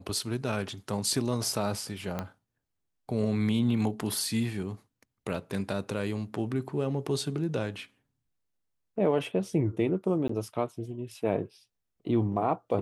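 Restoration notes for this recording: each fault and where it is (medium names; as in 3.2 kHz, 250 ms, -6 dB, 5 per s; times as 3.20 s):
2.19 s: pop -18 dBFS
10.28–10.29 s: dropout 14 ms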